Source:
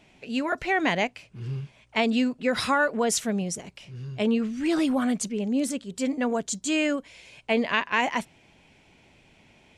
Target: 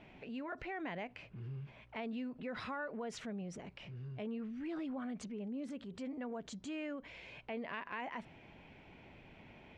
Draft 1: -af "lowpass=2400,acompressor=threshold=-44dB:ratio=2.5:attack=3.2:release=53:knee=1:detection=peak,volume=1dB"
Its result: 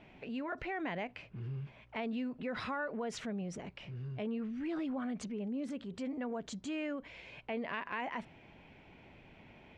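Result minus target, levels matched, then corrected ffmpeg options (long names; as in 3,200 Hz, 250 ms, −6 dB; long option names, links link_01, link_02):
downward compressor: peak gain reduction −4 dB
-af "lowpass=2400,acompressor=threshold=-50.5dB:ratio=2.5:attack=3.2:release=53:knee=1:detection=peak,volume=1dB"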